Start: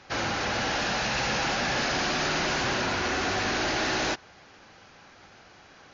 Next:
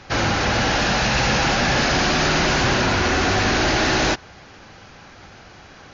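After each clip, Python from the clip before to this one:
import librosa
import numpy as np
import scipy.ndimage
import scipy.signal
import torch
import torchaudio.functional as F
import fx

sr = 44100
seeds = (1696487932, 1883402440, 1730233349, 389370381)

y = fx.low_shelf(x, sr, hz=160.0, db=9.0)
y = y * librosa.db_to_amplitude(7.5)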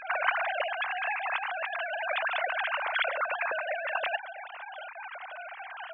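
y = fx.sine_speech(x, sr)
y = fx.over_compress(y, sr, threshold_db=-24.0, ratio=-0.5)
y = y * librosa.db_to_amplitude(-5.0)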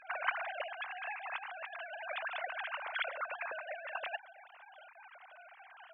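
y = fx.upward_expand(x, sr, threshold_db=-39.0, expansion=1.5)
y = y * librosa.db_to_amplitude(-6.0)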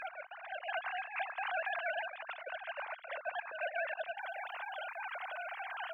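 y = fx.over_compress(x, sr, threshold_db=-47.0, ratio=-0.5)
y = y * librosa.db_to_amplitude(7.5)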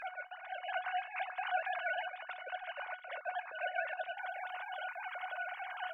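y = fx.comb_fb(x, sr, f0_hz=730.0, decay_s=0.17, harmonics='all', damping=0.0, mix_pct=80)
y = y * librosa.db_to_amplitude(10.0)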